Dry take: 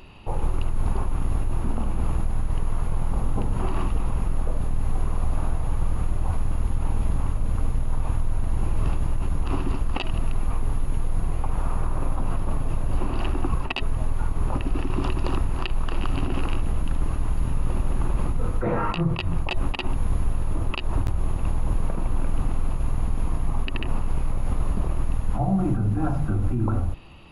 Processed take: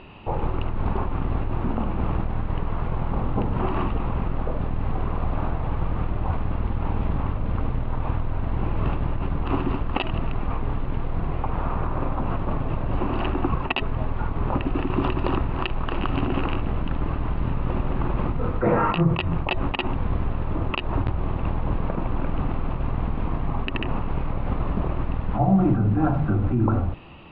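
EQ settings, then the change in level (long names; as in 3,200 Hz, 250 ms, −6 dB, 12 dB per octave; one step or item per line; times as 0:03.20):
low-pass filter 3,800 Hz 24 dB per octave
high-frequency loss of the air 180 metres
low-shelf EQ 75 Hz −11.5 dB
+6.0 dB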